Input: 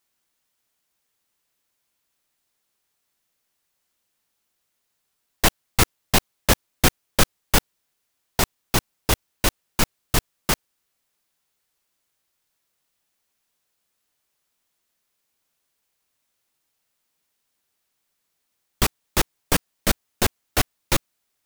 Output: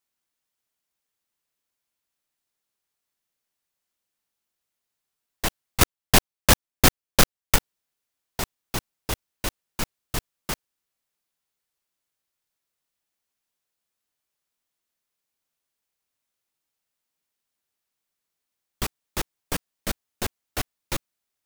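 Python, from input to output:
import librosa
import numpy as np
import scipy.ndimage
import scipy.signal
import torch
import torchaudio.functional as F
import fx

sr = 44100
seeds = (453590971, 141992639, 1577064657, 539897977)

y = fx.leveller(x, sr, passes=5, at=(5.81, 7.56))
y = y * librosa.db_to_amplitude(-8.0)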